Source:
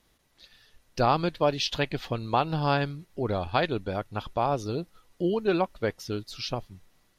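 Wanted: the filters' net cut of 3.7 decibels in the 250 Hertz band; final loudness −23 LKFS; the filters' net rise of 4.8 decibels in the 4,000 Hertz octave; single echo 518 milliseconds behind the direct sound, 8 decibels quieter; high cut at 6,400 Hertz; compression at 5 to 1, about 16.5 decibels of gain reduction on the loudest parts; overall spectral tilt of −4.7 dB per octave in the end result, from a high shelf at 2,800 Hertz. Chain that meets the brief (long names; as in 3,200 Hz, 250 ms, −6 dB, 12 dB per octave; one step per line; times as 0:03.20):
low-pass filter 6,400 Hz
parametric band 250 Hz −6 dB
high-shelf EQ 2,800 Hz +4.5 dB
parametric band 4,000 Hz +3 dB
downward compressor 5 to 1, threshold −38 dBFS
single-tap delay 518 ms −8 dB
level +18 dB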